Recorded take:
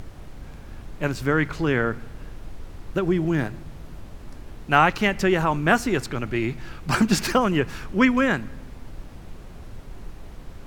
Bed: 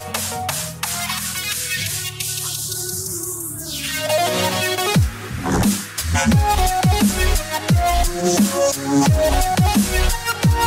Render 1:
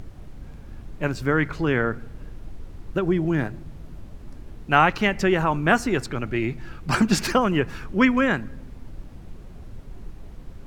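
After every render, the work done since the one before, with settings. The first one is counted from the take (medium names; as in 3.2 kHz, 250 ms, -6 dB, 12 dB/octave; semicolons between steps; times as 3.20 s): noise reduction 6 dB, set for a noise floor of -42 dBFS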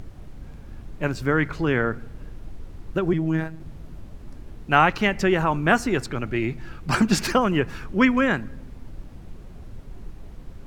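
3.13–3.60 s: robot voice 160 Hz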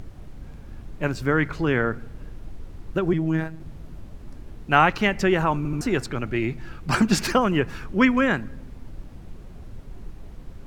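5.57 s: stutter in place 0.08 s, 3 plays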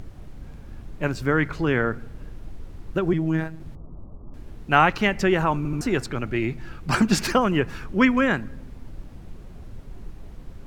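3.75–4.34 s: elliptic low-pass 1.2 kHz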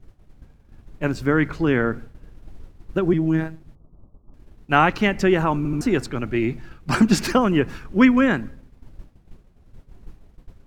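dynamic bell 270 Hz, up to +5 dB, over -32 dBFS, Q 1.2; expander -29 dBFS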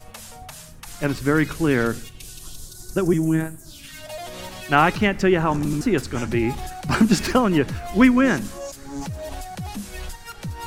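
add bed -16.5 dB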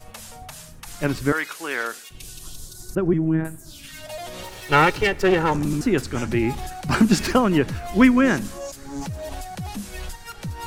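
1.32–2.11 s: high-pass 760 Hz; 2.95–3.45 s: distance through air 490 m; 4.43–5.55 s: comb filter that takes the minimum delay 2.2 ms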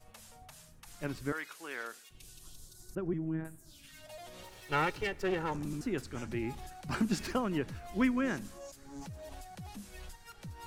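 trim -14.5 dB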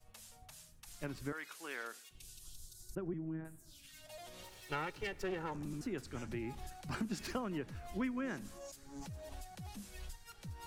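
compression 3:1, threshold -39 dBFS, peak gain reduction 11 dB; three bands expanded up and down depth 40%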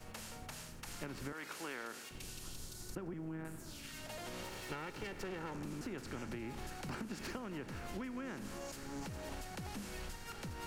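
spectral levelling over time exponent 0.6; compression 6:1, threshold -40 dBFS, peak gain reduction 10 dB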